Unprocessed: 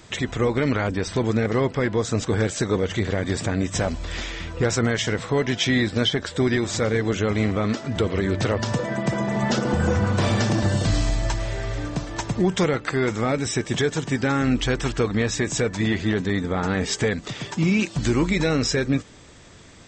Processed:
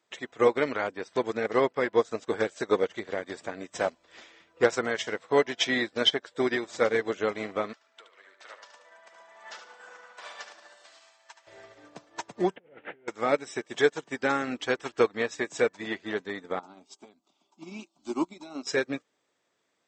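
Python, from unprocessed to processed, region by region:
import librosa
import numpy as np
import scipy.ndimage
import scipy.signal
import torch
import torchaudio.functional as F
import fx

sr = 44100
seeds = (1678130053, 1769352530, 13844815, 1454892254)

y = fx.chain(x, sr, fx.highpass(hz=1200.0, slope=12),
    fx.high_shelf(hz=2200.0, db=-4.0),
    fx.echo_feedback(ms=73, feedback_pct=35, wet_db=-4.5), at=(7.73, 11.47))
y = fx.chain(y, sr, fx.delta_mod(bps=16000, step_db=-35.0),
    fx.peak_eq(hz=1100.0, db=-14.0, octaves=0.41),
    fx.over_compress(threshold_db=-31.0, ratio=-1.0), at=(12.56, 13.08))
y = fx.chain(y, sr, fx.low_shelf(hz=450.0, db=3.0),
    fx.fixed_phaser(hz=480.0, stages=6),
    fx.upward_expand(threshold_db=-31.0, expansion=1.5), at=(16.59, 18.67))
y = scipy.signal.sosfilt(scipy.signal.butter(2, 480.0, 'highpass', fs=sr, output='sos'), y)
y = fx.tilt_eq(y, sr, slope=-1.5)
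y = fx.upward_expand(y, sr, threshold_db=-40.0, expansion=2.5)
y = F.gain(torch.from_numpy(y), 5.0).numpy()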